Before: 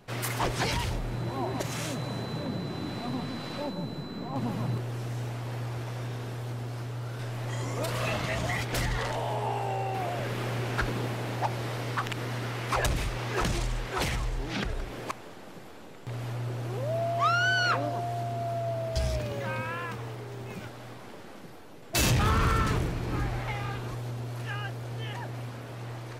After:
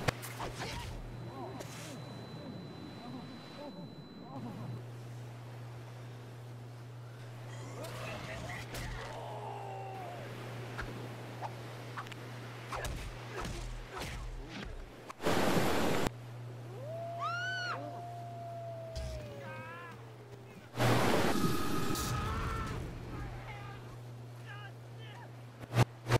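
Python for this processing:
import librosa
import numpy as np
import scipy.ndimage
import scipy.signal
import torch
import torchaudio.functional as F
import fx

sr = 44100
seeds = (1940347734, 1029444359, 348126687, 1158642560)

y = fx.gate_flip(x, sr, shuts_db=-31.0, range_db=-28)
y = fx.spec_repair(y, sr, seeds[0], start_s=21.34, length_s=0.85, low_hz=430.0, high_hz=3400.0, source='after')
y = y * 10.0 ** (16.0 / 20.0)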